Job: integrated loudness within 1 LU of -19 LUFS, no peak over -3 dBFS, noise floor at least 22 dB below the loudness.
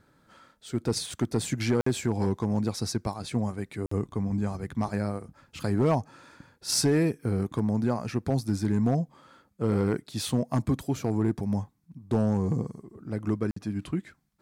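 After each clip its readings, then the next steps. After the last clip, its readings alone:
clipped 0.6%; flat tops at -17.0 dBFS; dropouts 3; longest dropout 54 ms; loudness -29.0 LUFS; peak -17.0 dBFS; loudness target -19.0 LUFS
-> clip repair -17 dBFS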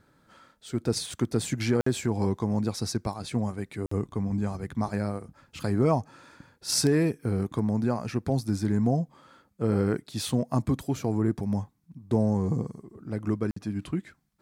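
clipped 0.0%; dropouts 3; longest dropout 54 ms
-> interpolate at 1.81/3.86/13.51, 54 ms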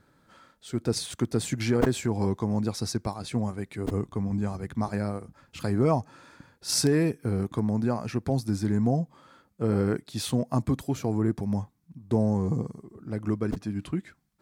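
dropouts 0; loudness -28.5 LUFS; peak -8.5 dBFS; loudness target -19.0 LUFS
-> gain +9.5 dB; limiter -3 dBFS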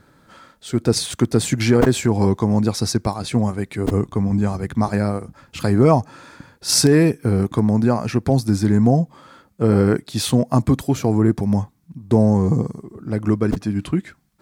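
loudness -19.0 LUFS; peak -3.0 dBFS; noise floor -57 dBFS

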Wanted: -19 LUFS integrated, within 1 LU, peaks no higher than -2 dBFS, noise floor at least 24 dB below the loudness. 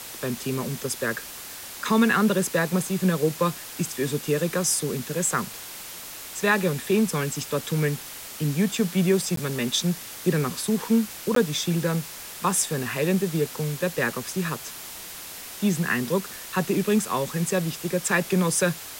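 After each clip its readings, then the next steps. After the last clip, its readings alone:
dropouts 2; longest dropout 13 ms; noise floor -39 dBFS; noise floor target -49 dBFS; loudness -25.0 LUFS; peak -9.0 dBFS; loudness target -19.0 LUFS
-> interpolate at 9.36/11.35, 13 ms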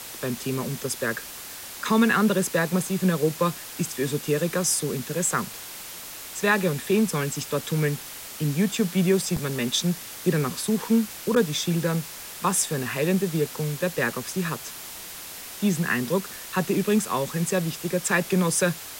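dropouts 0; noise floor -39 dBFS; noise floor target -49 dBFS
-> noise print and reduce 10 dB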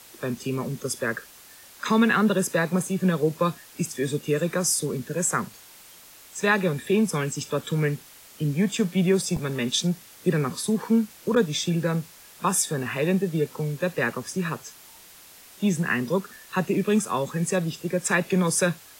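noise floor -49 dBFS; loudness -25.0 LUFS; peak -9.5 dBFS; loudness target -19.0 LUFS
-> gain +6 dB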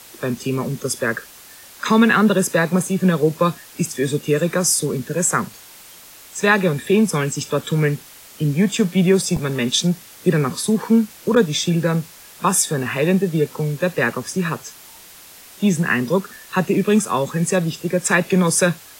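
loudness -19.0 LUFS; peak -3.5 dBFS; noise floor -43 dBFS

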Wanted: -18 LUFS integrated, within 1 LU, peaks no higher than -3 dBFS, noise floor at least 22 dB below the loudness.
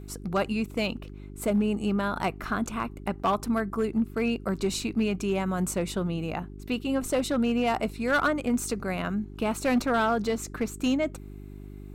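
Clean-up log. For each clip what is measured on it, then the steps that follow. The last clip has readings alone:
clipped 0.7%; flat tops at -18.5 dBFS; hum 50 Hz; harmonics up to 400 Hz; hum level -39 dBFS; loudness -28.0 LUFS; peak -18.5 dBFS; loudness target -18.0 LUFS
-> clip repair -18.5 dBFS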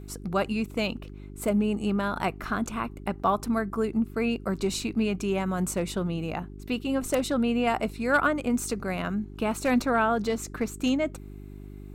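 clipped 0.0%; hum 50 Hz; harmonics up to 400 Hz; hum level -40 dBFS
-> de-hum 50 Hz, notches 8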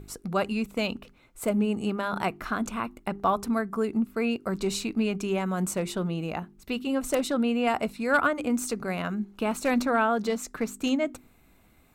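hum none; loudness -28.0 LUFS; peak -10.0 dBFS; loudness target -18.0 LUFS
-> gain +10 dB; limiter -3 dBFS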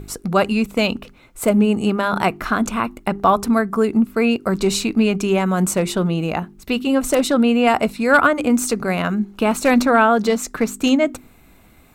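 loudness -18.5 LUFS; peak -3.0 dBFS; noise floor -50 dBFS

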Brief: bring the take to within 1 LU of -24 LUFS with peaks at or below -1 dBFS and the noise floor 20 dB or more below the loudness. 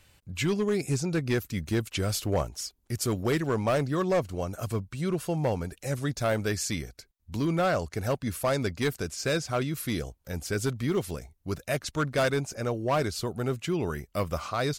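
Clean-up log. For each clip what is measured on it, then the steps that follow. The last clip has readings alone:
clipped 1.5%; flat tops at -20.0 dBFS; loudness -29.5 LUFS; peak -20.0 dBFS; loudness target -24.0 LUFS
-> clip repair -20 dBFS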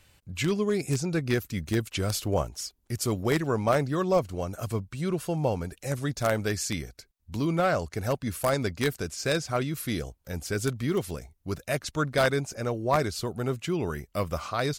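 clipped 0.0%; loudness -29.0 LUFS; peak -11.0 dBFS; loudness target -24.0 LUFS
-> gain +5 dB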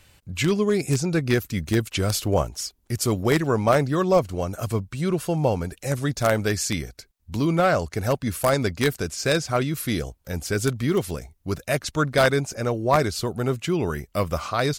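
loudness -24.0 LUFS; peak -6.0 dBFS; noise floor -65 dBFS

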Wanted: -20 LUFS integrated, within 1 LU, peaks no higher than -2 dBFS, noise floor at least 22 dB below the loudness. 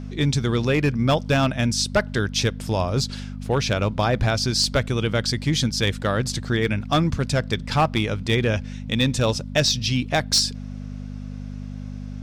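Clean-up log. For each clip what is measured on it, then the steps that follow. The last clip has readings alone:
clipped 0.4%; flat tops at -11.5 dBFS; hum 50 Hz; harmonics up to 250 Hz; hum level -30 dBFS; loudness -22.0 LUFS; peak -11.5 dBFS; loudness target -20.0 LUFS
-> clip repair -11.5 dBFS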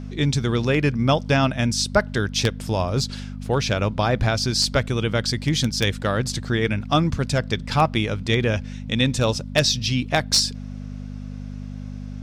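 clipped 0.0%; hum 50 Hz; harmonics up to 250 Hz; hum level -30 dBFS
-> de-hum 50 Hz, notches 5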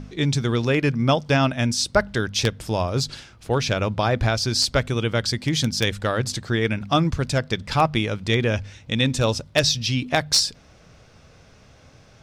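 hum none; loudness -22.0 LUFS; peak -2.5 dBFS; loudness target -20.0 LUFS
-> gain +2 dB; limiter -2 dBFS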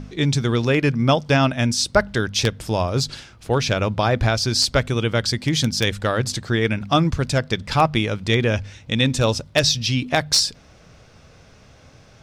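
loudness -20.5 LUFS; peak -2.0 dBFS; noise floor -49 dBFS

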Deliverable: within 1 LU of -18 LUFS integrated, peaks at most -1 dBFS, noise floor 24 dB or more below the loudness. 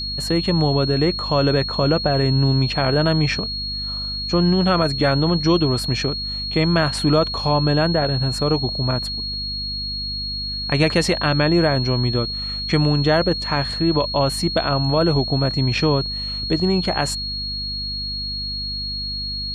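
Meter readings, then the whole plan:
hum 50 Hz; harmonics up to 250 Hz; hum level -31 dBFS; steady tone 4300 Hz; tone level -25 dBFS; loudness -20.0 LUFS; peak -4.5 dBFS; loudness target -18.0 LUFS
-> notches 50/100/150/200/250 Hz; notch 4300 Hz, Q 30; gain +2 dB

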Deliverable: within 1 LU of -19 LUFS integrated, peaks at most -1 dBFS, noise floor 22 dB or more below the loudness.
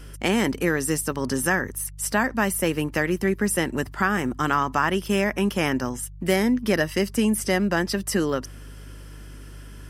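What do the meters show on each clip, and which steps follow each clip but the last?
hum 50 Hz; harmonics up to 150 Hz; hum level -38 dBFS; loudness -24.0 LUFS; peak -7.0 dBFS; loudness target -19.0 LUFS
-> de-hum 50 Hz, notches 3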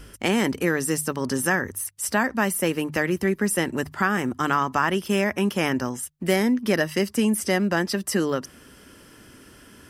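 hum none; loudness -24.0 LUFS; peak -7.0 dBFS; loudness target -19.0 LUFS
-> gain +5 dB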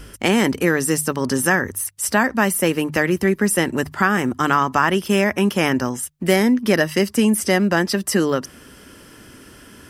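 loudness -19.0 LUFS; peak -2.0 dBFS; noise floor -45 dBFS

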